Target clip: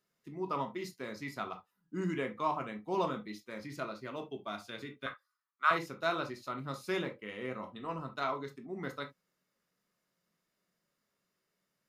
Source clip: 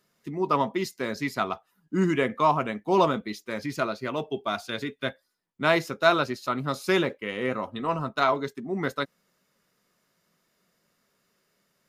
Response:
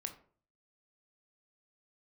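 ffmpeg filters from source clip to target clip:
-filter_complex "[0:a]asettb=1/sr,asplit=3[s0][s1][s2];[s0]atrim=end=5.064[s3];[s1]atrim=start=5.06:end=5.71,asetpts=PTS-STARTPTS,afade=t=in:d=0.004:c=qsin,afade=t=out:st=0.646:d=0.004:c=qsin,highpass=f=1200:t=q:w=7.3[s4];[s2]atrim=start=5.706[s5];[s3][s4]acrossfade=d=0.004:c1=hsin:c2=qsin[s6];[s6][s5]acrossfade=d=0.004:c1=qsin:c2=hsin[s7];[1:a]atrim=start_sample=2205,atrim=end_sample=3528[s8];[s7][s8]afir=irnorm=-1:irlink=0,volume=0.355"

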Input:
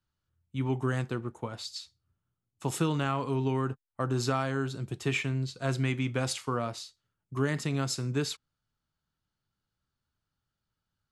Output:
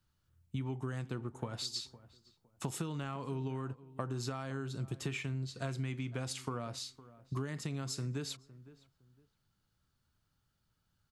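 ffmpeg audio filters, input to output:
-filter_complex "[0:a]bass=f=250:g=3,treble=f=4000:g=2,acompressor=threshold=0.0112:ratio=10,asplit=2[s0][s1];[s1]adelay=510,lowpass=f=1600:p=1,volume=0.133,asplit=2[s2][s3];[s3]adelay=510,lowpass=f=1600:p=1,volume=0.26[s4];[s2][s4]amix=inputs=2:normalize=0[s5];[s0][s5]amix=inputs=2:normalize=0,volume=1.58"

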